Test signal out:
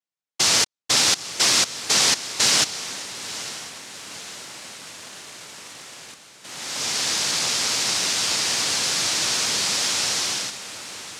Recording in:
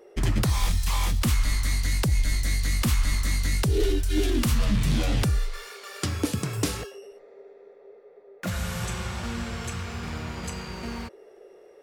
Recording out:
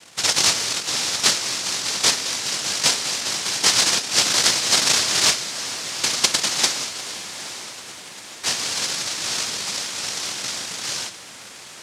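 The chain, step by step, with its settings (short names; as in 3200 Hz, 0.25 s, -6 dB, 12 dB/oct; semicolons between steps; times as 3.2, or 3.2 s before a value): noise vocoder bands 1; diffused feedback echo 0.886 s, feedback 61%, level -11.5 dB; dynamic EQ 5100 Hz, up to +7 dB, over -42 dBFS, Q 1.1; gain +3.5 dB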